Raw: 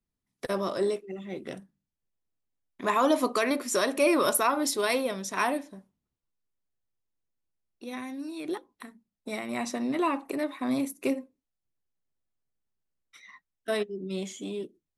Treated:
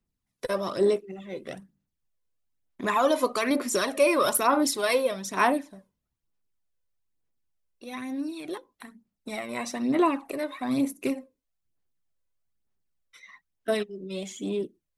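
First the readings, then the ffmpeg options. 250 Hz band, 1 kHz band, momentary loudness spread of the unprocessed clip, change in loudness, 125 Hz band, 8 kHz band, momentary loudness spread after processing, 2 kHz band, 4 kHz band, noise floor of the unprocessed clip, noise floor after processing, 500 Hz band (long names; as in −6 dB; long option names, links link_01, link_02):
+1.5 dB, +2.0 dB, 15 LU, +2.0 dB, +1.5 dB, +1.0 dB, 16 LU, +1.5 dB, +1.5 dB, below −85 dBFS, −82 dBFS, +2.5 dB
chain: -af "aphaser=in_gain=1:out_gain=1:delay=2:decay=0.49:speed=1.1:type=sinusoidal"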